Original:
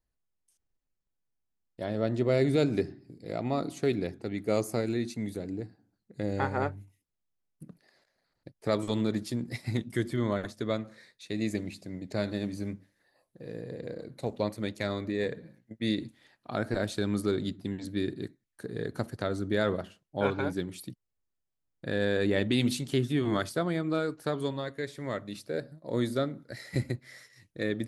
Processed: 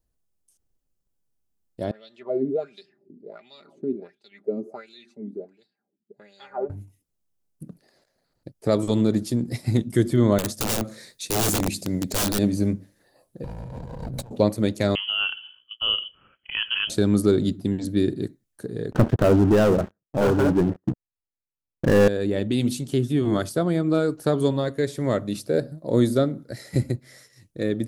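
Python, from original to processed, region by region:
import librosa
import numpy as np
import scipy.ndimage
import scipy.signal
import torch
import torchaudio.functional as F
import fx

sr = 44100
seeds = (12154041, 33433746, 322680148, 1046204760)

y = fx.chain(x, sr, fx.comb(ms=5.0, depth=0.78),
    fx.wah_lfo(hz=1.4, low_hz=260.0, high_hz=3800.0, q=5.2), at=(1.91, 6.7))
y = fx.chain(y, sr, fx.high_shelf(hz=3400.0, db=9.0),
    fx.overflow_wrap(gain_db=28.5), at=(10.38, 12.39))
y = fx.chain(y, sr, fx.lower_of_two(delay_ms=1.3),
    fx.peak_eq(hz=110.0, db=9.5, octaves=2.5),
    fx.over_compress(threshold_db=-47.0, ratio=-1.0), at=(13.44, 14.31))
y = fx.chain(y, sr, fx.freq_invert(carrier_hz=3200),
    fx.peak_eq(hz=760.0, db=-9.5, octaves=0.48), at=(14.95, 16.9))
y = fx.chain(y, sr, fx.cheby1_lowpass(hz=1900.0, order=8),
    fx.leveller(passes=5), at=(18.92, 22.08))
y = fx.graphic_eq(y, sr, hz=(1000, 2000, 4000), db=(-4, -8, -4))
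y = fx.rider(y, sr, range_db=10, speed_s=2.0)
y = y * 10.0 ** (5.0 / 20.0)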